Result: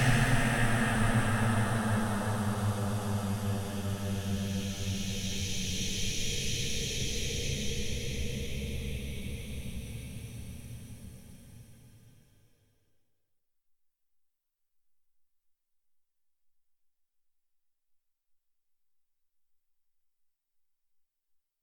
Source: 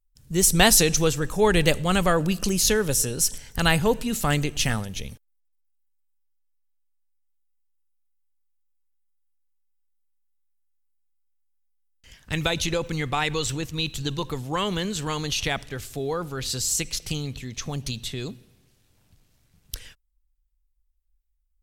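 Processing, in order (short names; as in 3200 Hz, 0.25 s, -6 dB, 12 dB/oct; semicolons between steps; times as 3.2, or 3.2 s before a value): compressor 2.5:1, threshold -23 dBFS, peak gain reduction 8 dB; Paulstretch 23×, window 0.25 s, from 4.7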